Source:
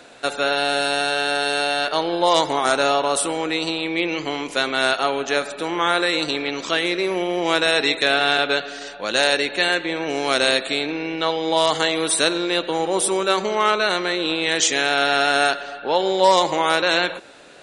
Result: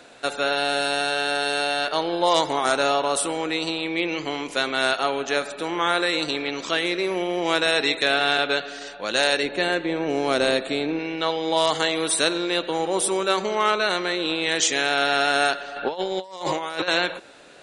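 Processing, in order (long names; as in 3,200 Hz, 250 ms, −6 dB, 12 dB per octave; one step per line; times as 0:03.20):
0:09.43–0:10.99: tilt shelving filter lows +5 dB, about 940 Hz
0:15.76–0:16.88: compressor whose output falls as the input rises −24 dBFS, ratio −0.5
level −2.5 dB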